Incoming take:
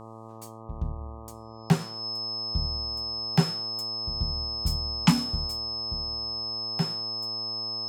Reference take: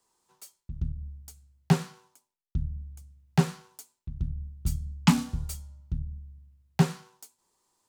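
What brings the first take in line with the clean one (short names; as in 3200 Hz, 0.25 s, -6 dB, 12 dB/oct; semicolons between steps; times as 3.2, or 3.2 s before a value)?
de-hum 111.8 Hz, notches 11; notch 5200 Hz, Q 30; gain 0 dB, from 5.47 s +6.5 dB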